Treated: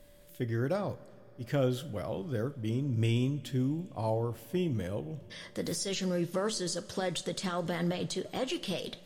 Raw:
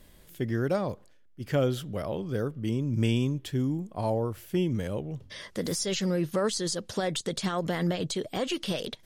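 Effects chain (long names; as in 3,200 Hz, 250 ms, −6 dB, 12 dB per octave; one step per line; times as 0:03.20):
steady tone 580 Hz −53 dBFS
coupled-rooms reverb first 0.3 s, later 4.7 s, from −21 dB, DRR 10 dB
level −4 dB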